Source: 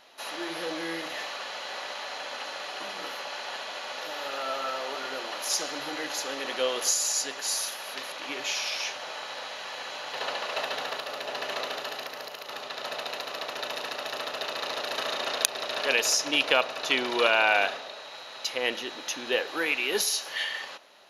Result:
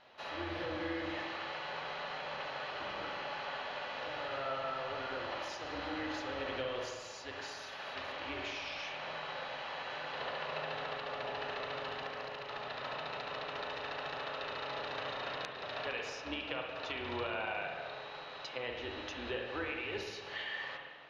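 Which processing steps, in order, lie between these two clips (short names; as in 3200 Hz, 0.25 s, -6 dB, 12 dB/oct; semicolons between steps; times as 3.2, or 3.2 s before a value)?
octaver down 2 oct, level -5 dB; compressor, threshold -32 dBFS, peak gain reduction 14.5 dB; air absorption 220 m; spring tank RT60 1.6 s, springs 45/58 ms, chirp 80 ms, DRR 1.5 dB; gain -3.5 dB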